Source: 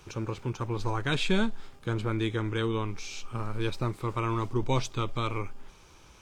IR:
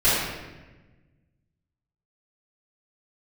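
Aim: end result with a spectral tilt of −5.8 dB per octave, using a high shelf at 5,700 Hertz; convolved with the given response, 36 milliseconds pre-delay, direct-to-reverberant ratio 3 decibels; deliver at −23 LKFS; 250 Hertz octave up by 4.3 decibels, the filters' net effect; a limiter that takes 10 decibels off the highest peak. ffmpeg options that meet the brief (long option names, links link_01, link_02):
-filter_complex "[0:a]equalizer=frequency=250:width_type=o:gain=6,highshelf=frequency=5700:gain=3.5,alimiter=limit=-21.5dB:level=0:latency=1,asplit=2[link_01][link_02];[1:a]atrim=start_sample=2205,adelay=36[link_03];[link_02][link_03]afir=irnorm=-1:irlink=0,volume=-21.5dB[link_04];[link_01][link_04]amix=inputs=2:normalize=0,volume=7.5dB"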